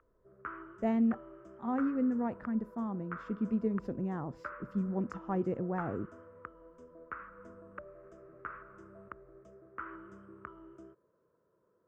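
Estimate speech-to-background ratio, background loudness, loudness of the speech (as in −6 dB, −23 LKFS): 14.0 dB, −49.0 LKFS, −35.0 LKFS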